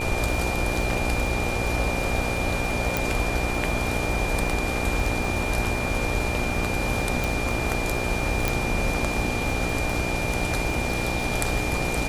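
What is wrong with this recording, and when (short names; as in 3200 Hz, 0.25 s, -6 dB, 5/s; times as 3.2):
buzz 60 Hz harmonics 15 -30 dBFS
crackle 44/s -30 dBFS
tone 2400 Hz -30 dBFS
2.97 pop
7.24 pop
8.48 pop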